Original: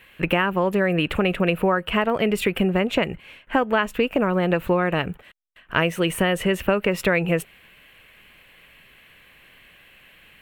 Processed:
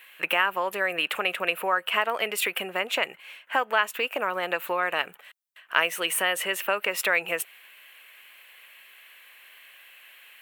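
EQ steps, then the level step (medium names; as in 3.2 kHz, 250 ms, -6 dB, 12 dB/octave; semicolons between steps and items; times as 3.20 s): high-pass 790 Hz 12 dB/octave; treble shelf 7.9 kHz +9 dB; 0.0 dB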